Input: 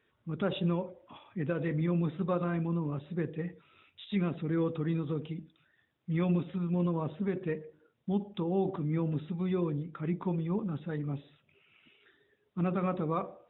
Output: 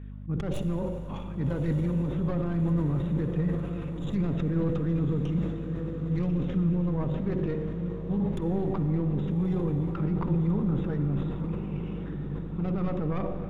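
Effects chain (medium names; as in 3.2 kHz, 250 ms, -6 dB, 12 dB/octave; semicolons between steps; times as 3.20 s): tracing distortion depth 0.25 ms; low-pass 1.9 kHz 6 dB/octave; bass shelf 190 Hz +11 dB; slow attack 119 ms; peak limiter -31.5 dBFS, peak gain reduction 16.5 dB; hum 50 Hz, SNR 11 dB; echo that smears into a reverb 1224 ms, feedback 63%, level -9 dB; on a send at -8 dB: reverberation RT60 5.5 s, pre-delay 38 ms; on the sum: decay stretcher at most 45 dB/s; trim +8.5 dB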